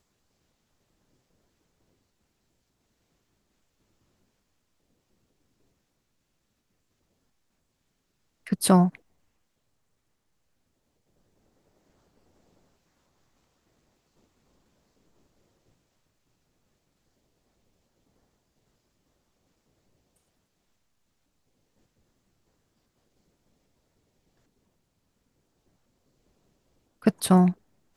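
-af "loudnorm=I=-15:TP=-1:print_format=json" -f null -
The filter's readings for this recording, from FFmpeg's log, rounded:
"input_i" : "-22.7",
"input_tp" : "-8.2",
"input_lra" : "1.2",
"input_thresh" : "-37.2",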